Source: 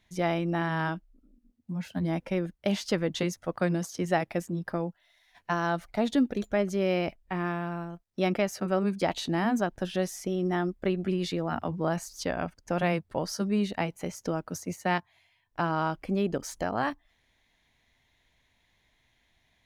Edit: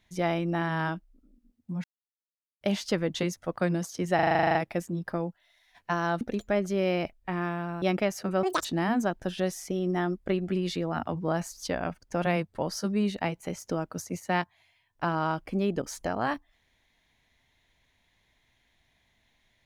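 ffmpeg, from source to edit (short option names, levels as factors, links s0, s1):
-filter_complex "[0:a]asplit=17[s0][s1][s2][s3][s4][s5][s6][s7][s8][s9][s10][s11][s12][s13][s14][s15][s16];[s0]atrim=end=1.84,asetpts=PTS-STARTPTS,afade=t=out:st=1.836:d=0.004:c=hsin[s17];[s1]atrim=start=1.84:end=2.61,asetpts=PTS-STARTPTS,volume=0[s18];[s2]atrim=start=2.61:end=4.192,asetpts=PTS-STARTPTS,afade=t=in:d=0.004:c=hsin[s19];[s3]atrim=start=4.148:end=4.192[s20];[s4]atrim=start=4.148:end=4.192[s21];[s5]atrim=start=4.148:end=4.192[s22];[s6]atrim=start=4.148:end=4.192[s23];[s7]atrim=start=4.148:end=4.192[s24];[s8]atrim=start=4.148:end=4.192[s25];[s9]atrim=start=4.148:end=4.192[s26];[s10]atrim=start=4.148:end=4.192[s27];[s11]atrim=start=4.148:end=4.192[s28];[s12]atrim=start=4.148:end=5.812[s29];[s13]atrim=start=6.238:end=7.852[s30];[s14]atrim=start=8.188:end=8.804[s31];[s15]atrim=start=8.8:end=9.21,asetpts=PTS-STARTPTS,asetrate=82908,aresample=44100[s32];[s16]atrim=start=9.206[s33];[s17][s18][s19]concat=n=3:v=0:a=1[s34];[s34][s20]acrossfade=d=0.004:c1=hsin:c2=hsin[s35];[s35][s21]acrossfade=d=0.004:c1=hsin:c2=hsin[s36];[s36][s22]acrossfade=d=0.004:c1=hsin:c2=hsin[s37];[s37][s23]acrossfade=d=0.004:c1=hsin:c2=hsin[s38];[s38][s24]acrossfade=d=0.004:c1=hsin:c2=hsin[s39];[s39][s25]acrossfade=d=0.004:c1=hsin:c2=hsin[s40];[s40][s26]acrossfade=d=0.004:c1=hsin:c2=hsin[s41];[s41][s27]acrossfade=d=0.004:c1=hsin:c2=hsin[s42];[s42][s28]acrossfade=d=0.004:c1=hsin:c2=hsin[s43];[s43][s29]acrossfade=d=0.004:c1=hsin:c2=hsin[s44];[s44][s30]acrossfade=d=0.004:c1=hsin:c2=hsin[s45];[s45][s31]acrossfade=d=0.004:c1=hsin:c2=hsin[s46];[s46][s32]acrossfade=d=0.004:c1=hsin:c2=hsin[s47];[s47][s33]acrossfade=d=0.004:c1=hsin:c2=hsin"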